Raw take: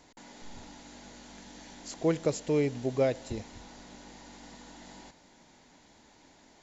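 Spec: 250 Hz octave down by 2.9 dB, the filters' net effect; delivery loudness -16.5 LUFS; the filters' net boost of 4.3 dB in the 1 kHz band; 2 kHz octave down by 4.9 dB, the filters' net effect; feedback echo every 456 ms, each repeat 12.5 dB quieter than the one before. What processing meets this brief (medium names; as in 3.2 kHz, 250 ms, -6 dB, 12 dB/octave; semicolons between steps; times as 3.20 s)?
peaking EQ 250 Hz -4.5 dB; peaking EQ 1 kHz +8 dB; peaking EQ 2 kHz -8.5 dB; feedback delay 456 ms, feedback 24%, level -12.5 dB; trim +14.5 dB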